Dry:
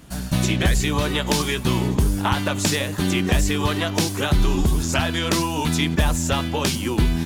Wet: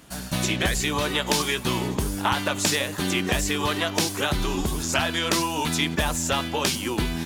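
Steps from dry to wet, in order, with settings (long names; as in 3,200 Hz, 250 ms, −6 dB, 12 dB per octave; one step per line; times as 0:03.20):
low-shelf EQ 230 Hz −10.5 dB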